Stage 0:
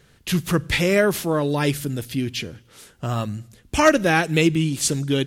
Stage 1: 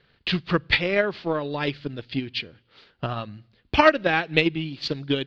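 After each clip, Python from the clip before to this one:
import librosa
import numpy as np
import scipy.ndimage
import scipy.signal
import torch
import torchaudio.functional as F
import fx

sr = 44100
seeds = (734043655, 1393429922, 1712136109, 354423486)

y = scipy.signal.sosfilt(scipy.signal.cheby1(5, 1.0, 4600.0, 'lowpass', fs=sr, output='sos'), x)
y = fx.low_shelf(y, sr, hz=380.0, db=-7.5)
y = fx.transient(y, sr, attack_db=10, sustain_db=-3)
y = y * librosa.db_to_amplitude(-3.5)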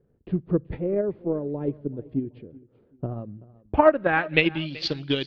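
y = fx.filter_sweep_lowpass(x, sr, from_hz=420.0, to_hz=5700.0, start_s=3.5, end_s=4.78, q=1.3)
y = fx.echo_feedback(y, sr, ms=381, feedback_pct=30, wet_db=-21)
y = y * librosa.db_to_amplitude(-1.0)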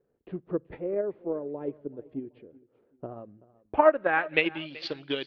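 y = fx.bass_treble(x, sr, bass_db=-15, treble_db=-12)
y = y * librosa.db_to_amplitude(-2.0)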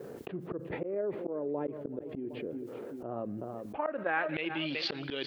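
y = scipy.signal.sosfilt(scipy.signal.butter(2, 130.0, 'highpass', fs=sr, output='sos'), x)
y = fx.auto_swell(y, sr, attack_ms=309.0)
y = fx.env_flatten(y, sr, amount_pct=70)
y = y * librosa.db_to_amplitude(-6.0)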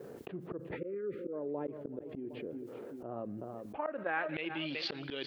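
y = fx.spec_erase(x, sr, start_s=0.76, length_s=0.57, low_hz=560.0, high_hz=1200.0)
y = y * librosa.db_to_amplitude(-3.5)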